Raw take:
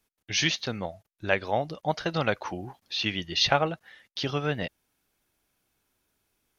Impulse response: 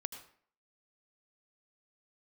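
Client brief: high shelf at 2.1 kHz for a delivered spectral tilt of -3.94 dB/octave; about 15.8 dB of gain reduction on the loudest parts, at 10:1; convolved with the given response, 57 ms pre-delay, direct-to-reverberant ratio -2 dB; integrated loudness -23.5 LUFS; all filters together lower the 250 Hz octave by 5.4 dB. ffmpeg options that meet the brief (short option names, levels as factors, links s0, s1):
-filter_complex "[0:a]equalizer=f=250:t=o:g=-8.5,highshelf=f=2100:g=-6.5,acompressor=threshold=0.0158:ratio=10,asplit=2[s0][s1];[1:a]atrim=start_sample=2205,adelay=57[s2];[s1][s2]afir=irnorm=-1:irlink=0,volume=1.41[s3];[s0][s3]amix=inputs=2:normalize=0,volume=5.01"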